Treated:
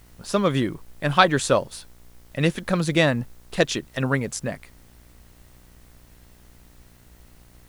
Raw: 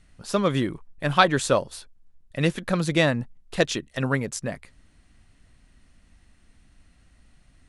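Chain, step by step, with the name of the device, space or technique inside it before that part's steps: video cassette with head-switching buzz (buzz 60 Hz, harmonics 37, -55 dBFS -6 dB/oct; white noise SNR 34 dB); gain +1.5 dB

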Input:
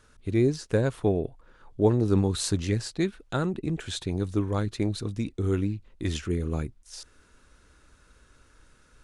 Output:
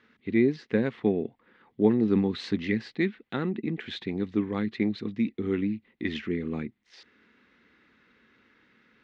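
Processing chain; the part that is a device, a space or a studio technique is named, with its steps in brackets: kitchen radio (speaker cabinet 210–3700 Hz, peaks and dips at 220 Hz +10 dB, 610 Hz -9 dB, 970 Hz -4 dB, 1400 Hz -5 dB, 2000 Hz +10 dB)

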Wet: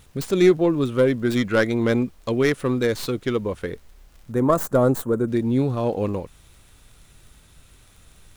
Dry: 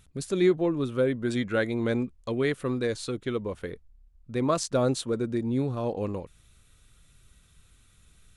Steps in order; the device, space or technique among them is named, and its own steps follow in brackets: record under a worn stylus (tracing distortion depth 0.36 ms; crackle 22/s; pink noise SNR 37 dB); 4.32–5.28 band shelf 3400 Hz -13 dB; gain +6.5 dB

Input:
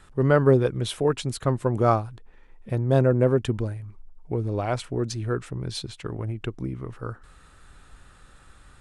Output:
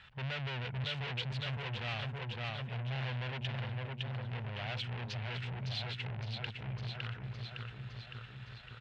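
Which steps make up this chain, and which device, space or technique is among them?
2.8–3.38 band shelf 1400 Hz -15.5 dB 2.3 oct; feedback echo 0.56 s, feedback 58%, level -7 dB; scooped metal amplifier (tube stage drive 35 dB, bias 0.4; speaker cabinet 97–3600 Hz, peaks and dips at 130 Hz +8 dB, 230 Hz +7 dB, 1200 Hz -8 dB, 2800 Hz +4 dB; passive tone stack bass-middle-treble 10-0-10); gain +9 dB

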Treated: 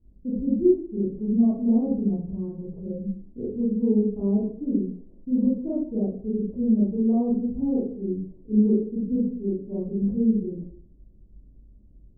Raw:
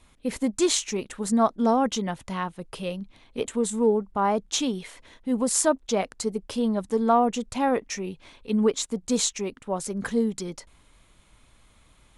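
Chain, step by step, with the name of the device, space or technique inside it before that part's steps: next room (LPF 350 Hz 24 dB/oct; reverb RT60 0.55 s, pre-delay 26 ms, DRR -8.5 dB); gain -3.5 dB

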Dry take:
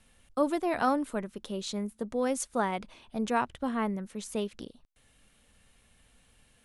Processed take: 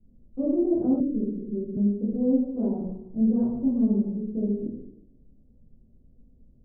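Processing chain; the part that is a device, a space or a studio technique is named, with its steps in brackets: next room (LPF 370 Hz 24 dB/oct; reverb RT60 0.85 s, pre-delay 10 ms, DRR -10 dB); 1–1.77 steep low-pass 540 Hz 96 dB/oct

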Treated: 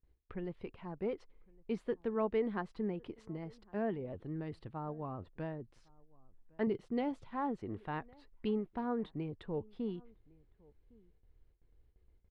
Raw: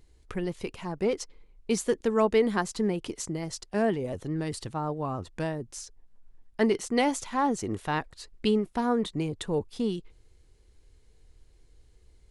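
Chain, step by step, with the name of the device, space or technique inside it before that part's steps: shout across a valley (air absorption 430 m; outdoor echo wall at 190 m, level -26 dB); gate with hold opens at -49 dBFS; 6.67–7.32 graphic EQ 125/1000/2000 Hz +9/-4/-5 dB; gain -9 dB

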